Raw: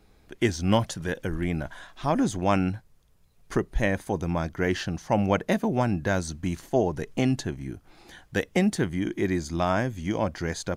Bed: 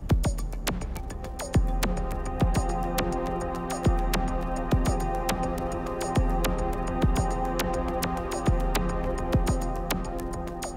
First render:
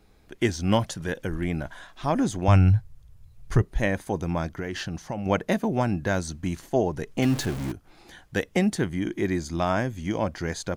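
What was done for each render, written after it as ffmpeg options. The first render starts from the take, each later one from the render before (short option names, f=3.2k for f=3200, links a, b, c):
-filter_complex "[0:a]asettb=1/sr,asplit=3[a][b][c];[a]atrim=end=2.484[d];[b]atrim=start=2.48:end=3.62,asetpts=PTS-STARTPTS,afade=t=in:d=0.004:c=qsin,afade=t=out:st=1.136:d=0.004:c=qsin,lowshelf=f=160:t=q:w=1.5:g=13[e];[c]atrim=start=3.616[f];[d][e]acrossfade=d=0.004:c1=hsin:c2=qsin[g];[g][f]acrossfade=d=0.004:c1=qsin:c2=hsin,asettb=1/sr,asplit=3[h][i][j];[h]atrim=end=4.584[k];[i]atrim=start=4.58:end=5.26,asetpts=PTS-STARTPTS,afade=t=in:d=0.004:c=qsin,afade=t=out:st=0.676:d=0.004:c=qsin,acompressor=threshold=-26dB:ratio=12:attack=3.2:release=140:knee=1:detection=peak[l];[j]atrim=start=5.256[m];[k][l]acrossfade=d=0.004:c1=hsin:c2=qsin[n];[n][m]acrossfade=d=0.004:c1=qsin:c2=hsin,asettb=1/sr,asplit=3[o][p][q];[o]atrim=end=7.224[r];[p]atrim=start=7.22:end=7.72,asetpts=PTS-STARTPTS,afade=t=in:d=0.004:c=qsin,afade=t=out:st=0.496:d=0.004:c=qsin,aeval=exprs='val(0)+0.5*0.0355*sgn(val(0))':c=same[s];[q]atrim=start=7.716[t];[r][s]acrossfade=d=0.004:c1=hsin:c2=qsin[u];[u][t]acrossfade=d=0.004:c1=qsin:c2=hsin"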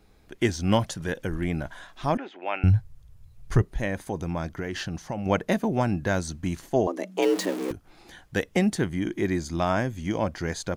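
-filter_complex "[0:a]asettb=1/sr,asplit=3[a][b][c];[a]atrim=end=2.174[d];[b]atrim=start=2.17:end=2.64,asetpts=PTS-STARTPTS,afade=t=in:d=0.004:c=qsin,afade=t=out:st=0.466:d=0.004:c=qsin,highpass=f=430:w=0.5412,highpass=f=430:w=1.3066,equalizer=f=480:t=q:w=4:g=-8,equalizer=f=680:t=q:w=4:g=-5,equalizer=f=1.1k:t=q:w=4:g=-9,equalizer=f=1.6k:t=q:w=4:g=-3,equalizer=f=2.6k:t=q:w=4:g=5,lowpass=f=2.8k:w=0.5412,lowpass=f=2.8k:w=1.3066[e];[c]atrim=start=2.636[f];[d][e]acrossfade=d=0.004:c1=hsin:c2=qsin[g];[g][f]acrossfade=d=0.004:c1=qsin:c2=hsin,asettb=1/sr,asplit=3[h][i][j];[h]atrim=end=3.694[k];[i]atrim=start=3.69:end=4.58,asetpts=PTS-STARTPTS,afade=t=in:d=0.004:c=qsin,afade=t=out:st=0.886:d=0.004:c=qsin,acompressor=threshold=-29dB:ratio=1.5:attack=3.2:release=140:knee=1:detection=peak[l];[j]atrim=start=4.576[m];[k][l]acrossfade=d=0.004:c1=hsin:c2=qsin[n];[n][m]acrossfade=d=0.004:c1=qsin:c2=hsin,asettb=1/sr,asplit=3[o][p][q];[o]atrim=end=6.874[r];[p]atrim=start=6.87:end=7.71,asetpts=PTS-STARTPTS,afade=t=in:d=0.004:c=qsin,afade=t=out:st=0.836:d=0.004:c=qsin,afreqshift=180[s];[q]atrim=start=7.706[t];[r][s]acrossfade=d=0.004:c1=hsin:c2=qsin[u];[u][t]acrossfade=d=0.004:c1=qsin:c2=hsin"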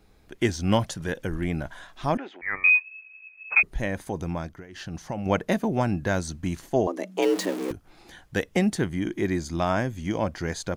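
-filter_complex "[0:a]asettb=1/sr,asplit=3[a][b][c];[a]atrim=end=2.414[d];[b]atrim=start=2.41:end=3.63,asetpts=PTS-STARTPTS,afade=t=in:d=0.004:c=qsin,afade=t=out:st=1.216:d=0.004:c=qsin,lowpass=f=2.2k:t=q:w=0.5098,lowpass=f=2.2k:t=q:w=0.6013,lowpass=f=2.2k:t=q:w=0.9,lowpass=f=2.2k:t=q:w=2.563,afreqshift=-2600[e];[c]atrim=start=3.626[f];[d][e]acrossfade=d=0.004:c1=hsin:c2=qsin[g];[g][f]acrossfade=d=0.004:c1=qsin:c2=hsin,asplit=3[h][i][j];[h]atrim=end=4.67,asetpts=PTS-STARTPTS,afade=t=out:st=4.33:d=0.34:silence=0.16788[k];[i]atrim=start=4.67:end=4.68,asetpts=PTS-STARTPTS,volume=-15.5dB[l];[j]atrim=start=4.68,asetpts=PTS-STARTPTS,afade=t=in:d=0.34:silence=0.16788[m];[k][l][m]concat=n=3:v=0:a=1"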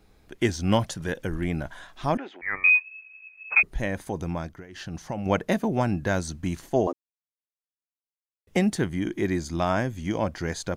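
-filter_complex "[0:a]asplit=3[a][b][c];[a]atrim=end=6.93,asetpts=PTS-STARTPTS,afade=t=out:st=6.926:d=0.004:c=hsin[d];[b]atrim=start=6.93:end=8.47,asetpts=PTS-STARTPTS,volume=0[e];[c]atrim=start=8.47,asetpts=PTS-STARTPTS,afade=t=in:d=0.004:c=hsin[f];[d][e][f]concat=n=3:v=0:a=1"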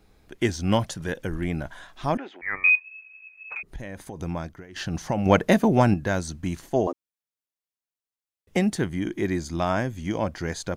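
-filter_complex "[0:a]asettb=1/sr,asplit=3[a][b][c];[a]atrim=end=2.754[d];[b]atrim=start=2.75:end=4.2,asetpts=PTS-STARTPTS,afade=t=in:d=0.004:c=qsin,afade=t=out:st=1.446:d=0.004:c=qsin,acompressor=threshold=-32dB:ratio=6:attack=3.2:release=140:knee=1:detection=peak[e];[c]atrim=start=4.196[f];[d][e]acrossfade=d=0.004:c1=hsin:c2=qsin[g];[g][f]acrossfade=d=0.004:c1=qsin:c2=hsin,asettb=1/sr,asplit=3[h][i][j];[h]atrim=end=4.764[k];[i]atrim=start=4.76:end=5.94,asetpts=PTS-STARTPTS,afade=t=in:d=0.004:c=qsin,afade=t=out:st=1.176:d=0.004:c=qsin,acontrast=57[l];[j]atrim=start=5.936[m];[k][l]acrossfade=d=0.004:c1=hsin:c2=qsin[n];[n][m]acrossfade=d=0.004:c1=qsin:c2=hsin"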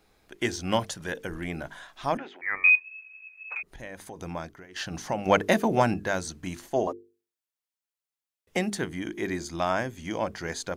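-af "lowshelf=f=260:g=-10,bandreject=f=50:t=h:w=6,bandreject=f=100:t=h:w=6,bandreject=f=150:t=h:w=6,bandreject=f=200:t=h:w=6,bandreject=f=250:t=h:w=6,bandreject=f=300:t=h:w=6,bandreject=f=350:t=h:w=6,bandreject=f=400:t=h:w=6,bandreject=f=450:t=h:w=6"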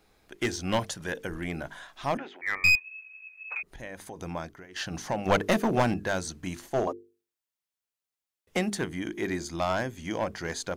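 -af "aeval=exprs='clip(val(0),-1,0.0794)':c=same"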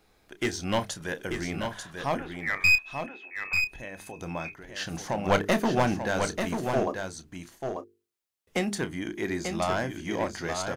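-filter_complex "[0:a]asplit=2[a][b];[b]adelay=30,volume=-12.5dB[c];[a][c]amix=inputs=2:normalize=0,aecho=1:1:890:0.501"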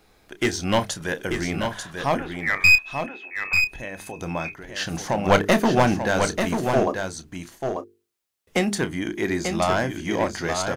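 -af "volume=6dB"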